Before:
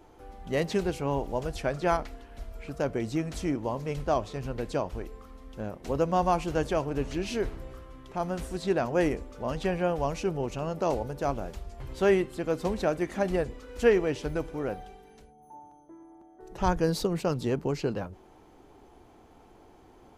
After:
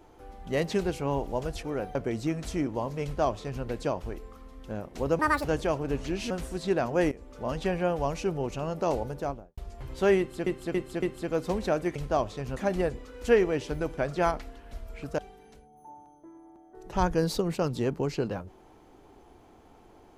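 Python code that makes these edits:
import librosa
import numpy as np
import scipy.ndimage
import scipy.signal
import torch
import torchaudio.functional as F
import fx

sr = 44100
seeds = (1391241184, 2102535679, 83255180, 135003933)

y = fx.studio_fade_out(x, sr, start_s=11.1, length_s=0.47)
y = fx.edit(y, sr, fx.swap(start_s=1.63, length_s=1.21, other_s=14.52, other_length_s=0.32),
    fx.duplicate(start_s=3.92, length_s=0.61, to_s=13.11),
    fx.speed_span(start_s=6.08, length_s=0.43, speed=1.69),
    fx.cut(start_s=7.37, length_s=0.93),
    fx.fade_in_from(start_s=9.11, length_s=0.27, floor_db=-20.0),
    fx.repeat(start_s=12.18, length_s=0.28, count=4), tone=tone)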